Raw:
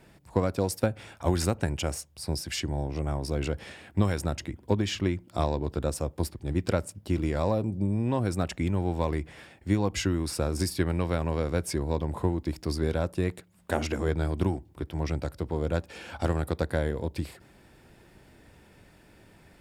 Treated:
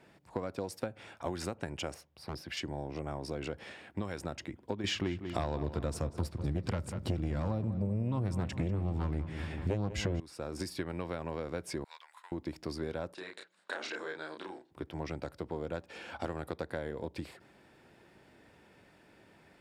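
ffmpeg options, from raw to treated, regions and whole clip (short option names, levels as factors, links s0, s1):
-filter_complex "[0:a]asettb=1/sr,asplit=3[s0][s1][s2];[s0]atrim=end=1.944[s3];[s1]atrim=start=1.94:end=2.57,asetpts=PTS-STARTPTS,afade=t=in:d=0.004:c=qsin,afade=t=out:st=0.626:d=0.004:c=qsin,equalizer=f=7700:w=1.1:g=-13.5,aeval=exprs='0.0668*(abs(mod(val(0)/0.0668+3,4)-2)-1)':c=same[s4];[s2]atrim=start=2.566[s5];[s3][s4]acrossfade=d=0.004:c1=hsin:c2=qsin[s6];[s6][s5]acrossfade=d=0.004:c1=qsin:c2=hsin,asettb=1/sr,asplit=3[s7][s8][s9];[s7]atrim=end=4.844[s10];[s8]atrim=start=4.84:end=10.2,asetpts=PTS-STARTPTS,afade=t=in:d=0.004:c=qsin,afade=t=out:st=5.356:d=0.004:c=qsin,asubboost=boost=7:cutoff=190,aeval=exprs='0.75*sin(PI/2*2.82*val(0)/0.75)':c=same,asplit=2[s11][s12];[s12]adelay=192,lowpass=f=3400:p=1,volume=0.211,asplit=2[s13][s14];[s14]adelay=192,lowpass=f=3400:p=1,volume=0.52,asplit=2[s15][s16];[s16]adelay=192,lowpass=f=3400:p=1,volume=0.52,asplit=2[s17][s18];[s18]adelay=192,lowpass=f=3400:p=1,volume=0.52,asplit=2[s19][s20];[s20]adelay=192,lowpass=f=3400:p=1,volume=0.52[s21];[s11][s13][s15][s17][s19][s21]amix=inputs=6:normalize=0,atrim=end_sample=236376[s22];[s9]atrim=start=10.196[s23];[s10][s22]acrossfade=d=0.004:c1=hsin:c2=qsin[s24];[s24][s23]acrossfade=d=0.004:c1=qsin:c2=hsin,asettb=1/sr,asplit=3[s25][s26][s27];[s25]atrim=end=11.844[s28];[s26]atrim=start=11.84:end=12.32,asetpts=PTS-STARTPTS,afade=t=in:d=0.004:c=qsin,afade=t=out:st=0.476:d=0.004:c=qsin,agate=range=0.0224:threshold=0.0178:ratio=3:release=100:detection=peak,highpass=f=1400:w=0.5412,highpass=f=1400:w=1.3066[s29];[s27]atrim=start=12.316[s30];[s28][s29]acrossfade=d=0.004:c1=hsin:c2=qsin[s31];[s31][s30]acrossfade=d=0.004:c1=qsin:c2=hsin,asettb=1/sr,asplit=3[s32][s33][s34];[s32]atrim=end=13.144[s35];[s33]atrim=start=13.14:end=14.71,asetpts=PTS-STARTPTS,afade=t=in:d=0.004:c=qsin,afade=t=out:st=1.566:d=0.004:c=qsin,acompressor=threshold=0.0251:ratio=2.5:attack=3.2:release=140:knee=1:detection=peak,highpass=450,equalizer=f=710:t=q:w=4:g=-4,equalizer=f=1600:t=q:w=4:g=8,equalizer=f=4000:t=q:w=4:g=10,lowpass=f=9400:w=0.5412,lowpass=f=9400:w=1.3066,asplit=2[s36][s37];[s37]adelay=32,volume=0.708[s38];[s36][s38]amix=inputs=2:normalize=0,atrim=end_sample=69237[s39];[s34]atrim=start=14.706[s40];[s35][s39]acrossfade=d=0.004:c1=hsin:c2=qsin[s41];[s41][s40]acrossfade=d=0.004:c1=qsin:c2=hsin,highpass=f=240:p=1,highshelf=f=6900:g=-11.5,acompressor=threshold=0.0282:ratio=4,volume=0.794"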